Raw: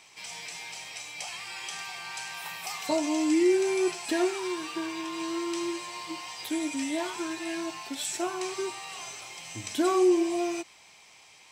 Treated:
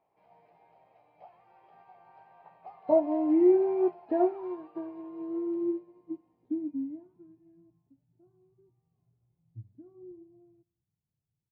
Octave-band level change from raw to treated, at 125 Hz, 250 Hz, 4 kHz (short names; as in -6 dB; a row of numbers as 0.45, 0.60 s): n/a, -2.0 dB, under -35 dB